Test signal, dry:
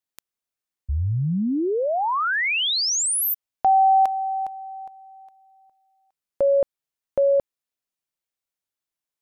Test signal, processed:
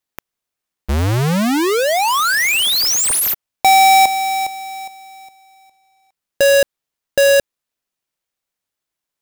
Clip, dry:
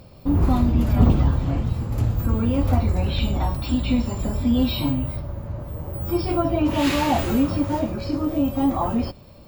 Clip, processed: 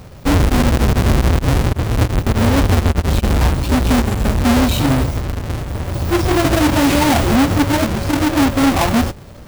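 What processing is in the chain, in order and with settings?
each half-wave held at its own peak
brickwall limiter −13 dBFS
level +4 dB

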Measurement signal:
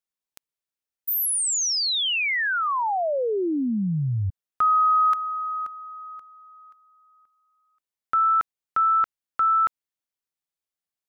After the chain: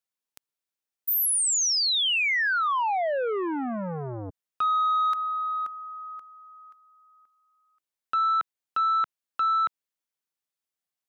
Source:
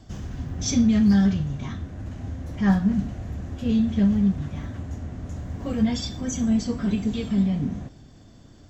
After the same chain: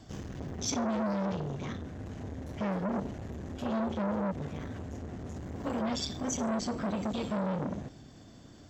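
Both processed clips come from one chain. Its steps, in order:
brickwall limiter −19.5 dBFS
low-shelf EQ 81 Hz −11.5 dB
saturating transformer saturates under 770 Hz

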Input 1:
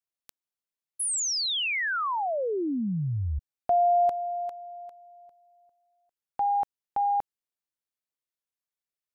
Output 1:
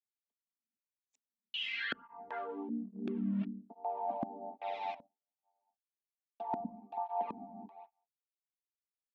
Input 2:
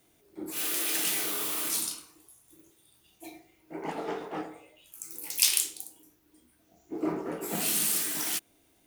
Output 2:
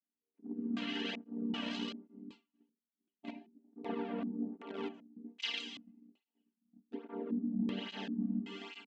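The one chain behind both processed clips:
channel vocoder with a chord as carrier minor triad, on G3
dynamic equaliser 350 Hz, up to +3 dB, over −42 dBFS, Q 2.8
reverb whose tail is shaped and stops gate 480 ms rising, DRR 5 dB
in parallel at −3 dB: centre clipping without the shift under −35 dBFS
on the sum: treble cut that deepens with the level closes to 1,400 Hz, closed at −20 dBFS
comb filter 4.4 ms, depth 55%
tape delay 197 ms, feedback 30%, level −18.5 dB, low-pass 1,900 Hz
auto-filter low-pass square 1.3 Hz 240–3,200 Hz
downward expander −42 dBFS
reversed playback
downward compressor 16 to 1, threshold −29 dBFS
reversed playback
through-zero flanger with one copy inverted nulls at 1.2 Hz, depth 2.6 ms
level −2 dB

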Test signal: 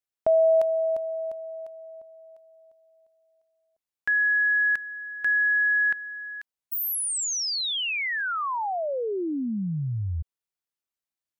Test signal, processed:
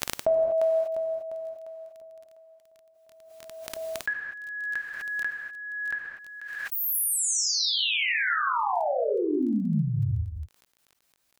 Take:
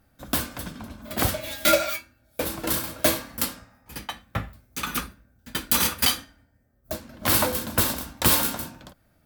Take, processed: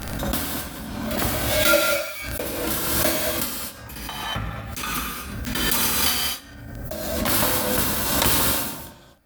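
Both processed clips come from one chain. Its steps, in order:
reverb whose tail is shaped and stops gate 270 ms flat, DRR −2 dB
surface crackle 14 per second −41 dBFS
background raised ahead of every attack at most 31 dB per second
level −2.5 dB

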